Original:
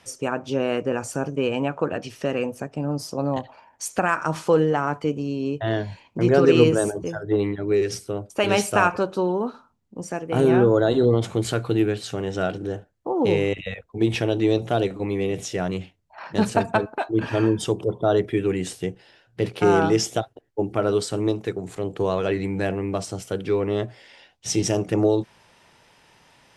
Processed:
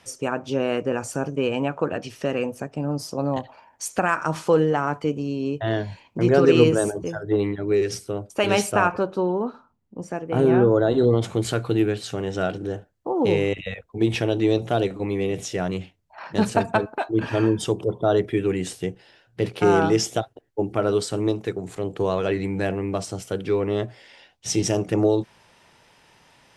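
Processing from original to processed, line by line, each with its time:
0:08.71–0:10.98: high-shelf EQ 3,100 Hz −9.5 dB

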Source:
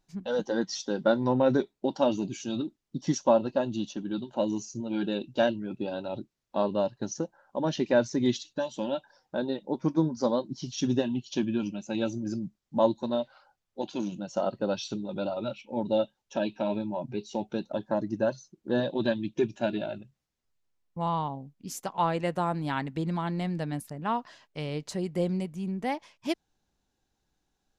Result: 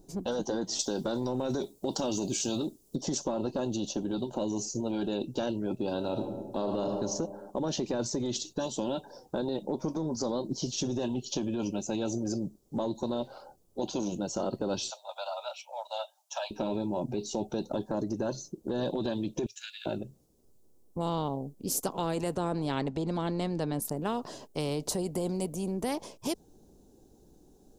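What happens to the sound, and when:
0:00.79–0:02.96: high-shelf EQ 3,600 Hz +11.5 dB
0:05.96–0:06.90: thrown reverb, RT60 0.99 s, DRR 6 dB
0:14.90–0:16.51: Butterworth high-pass 630 Hz 96 dB per octave
0:19.46–0:19.86: Butterworth high-pass 1,700 Hz 48 dB per octave
0:22.35–0:23.82: low-pass filter 5,100 Hz
whole clip: drawn EQ curve 110 Hz 0 dB, 410 Hz +9 dB, 1,900 Hz −22 dB, 9,200 Hz 0 dB; brickwall limiter −21.5 dBFS; every bin compressed towards the loudest bin 2 to 1; level +7 dB

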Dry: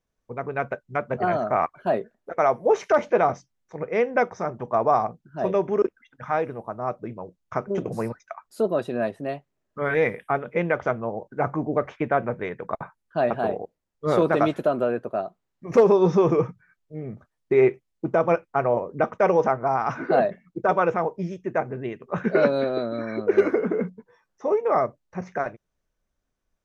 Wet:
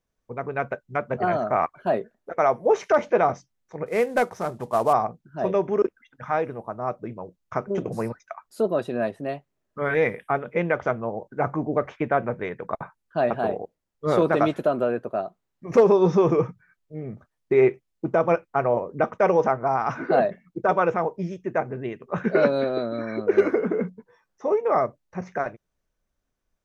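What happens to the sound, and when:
0:03.86–0:04.93: variable-slope delta modulation 64 kbit/s

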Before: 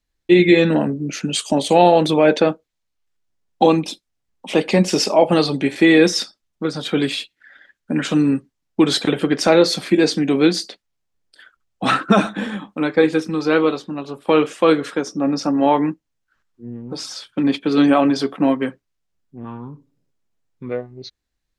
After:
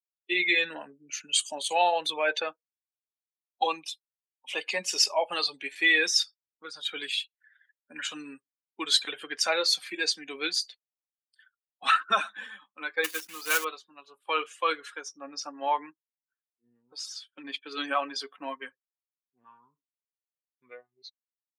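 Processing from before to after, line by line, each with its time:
0:13.04–0:13.65: one scale factor per block 3 bits
whole clip: spectral dynamics exaggerated over time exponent 1.5; high-pass filter 1,200 Hz 12 dB per octave

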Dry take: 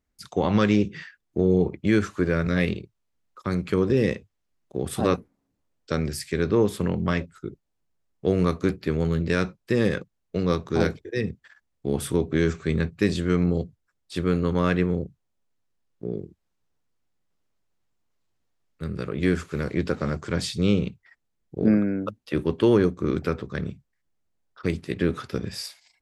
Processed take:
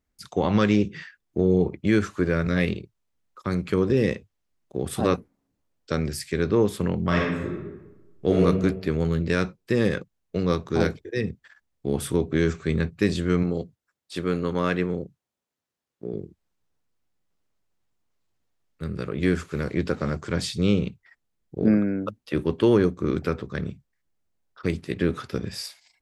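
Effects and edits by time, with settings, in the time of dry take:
0:07.07–0:08.42: thrown reverb, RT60 1.1 s, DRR −2.5 dB
0:13.43–0:16.14: high-pass filter 210 Hz 6 dB per octave

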